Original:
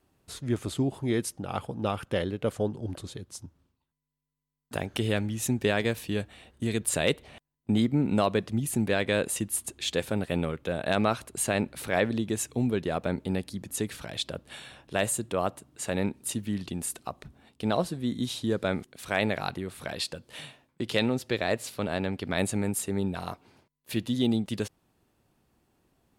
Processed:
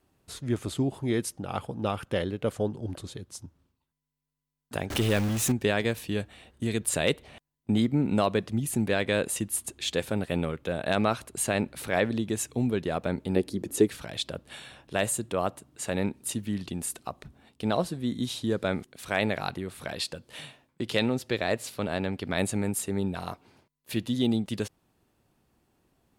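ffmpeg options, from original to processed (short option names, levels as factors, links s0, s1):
-filter_complex "[0:a]asettb=1/sr,asplit=3[s0][s1][s2];[s0]atrim=end=4.904[s3];[s1]atrim=start=4.9:end=5.52,asetpts=PTS-STARTPTS,afade=t=in:d=0.004:c=qsin,afade=t=out:st=0.616:d=0.004:c=qsin,aeval=exprs='val(0)+0.5*0.0398*sgn(val(0))':c=same[s4];[s2]atrim=start=5.516[s5];[s3][s4]acrossfade=d=0.004:c1=hsin:c2=qsin[s6];[s6][s5]acrossfade=d=0.004:c1=qsin:c2=hsin,asettb=1/sr,asplit=3[s7][s8][s9];[s7]atrim=end=13.364[s10];[s8]atrim=start=13.36:end=13.88,asetpts=PTS-STARTPTS,afade=t=in:d=0.004:c=qsin,afade=t=out:st=0.516:d=0.004:c=qsin,equalizer=f=370:w=1.4:g=14[s11];[s9]atrim=start=13.876[s12];[s10][s11]acrossfade=d=0.004:c1=hsin:c2=qsin[s13];[s13][s12]acrossfade=d=0.004:c1=qsin:c2=hsin"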